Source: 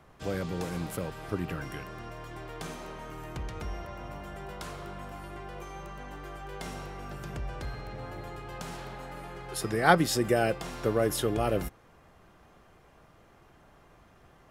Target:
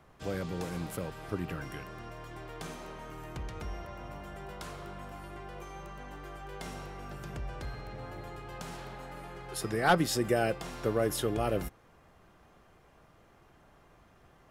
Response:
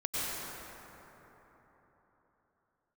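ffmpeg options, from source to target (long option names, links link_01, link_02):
-af "volume=12.5dB,asoftclip=hard,volume=-12.5dB,volume=-2.5dB"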